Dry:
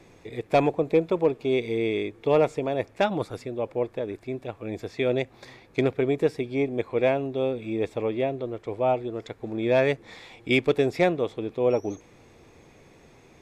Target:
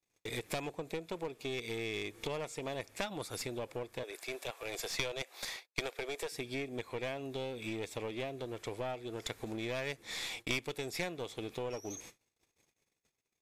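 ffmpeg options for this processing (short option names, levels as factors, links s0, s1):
-filter_complex "[0:a]agate=range=0.00562:threshold=0.00398:ratio=16:detection=peak,asettb=1/sr,asplit=3[s0][s1][s2];[s0]atrim=end=4.034[s3];[s1]atrim=start=4.03:end=6.32,asetpts=PTS-STARTPTS,afade=t=in:d=0.004:c=qsin,afade=t=out:st=2.286:d=0.004:c=qsin,highpass=f=450:w=0.5412,highpass=f=450:w=1.3066[s4];[s2]atrim=start=6.316[s5];[s3][s4]acrossfade=d=0.004:c1=hsin:c2=qsin[s6];[s6][s5]acrossfade=d=0.004:c1=qsin:c2=hsin,acompressor=threshold=0.02:ratio=8,crystalizer=i=8.5:c=0,aeval=exprs='clip(val(0),-1,0.0158)':c=same,aresample=32000,aresample=44100,volume=0.708"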